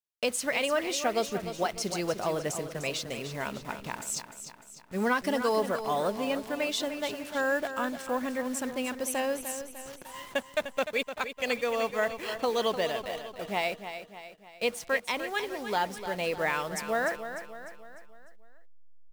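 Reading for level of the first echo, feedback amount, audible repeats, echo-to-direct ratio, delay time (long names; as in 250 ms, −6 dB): −10.0 dB, 49%, 5, −9.0 dB, 300 ms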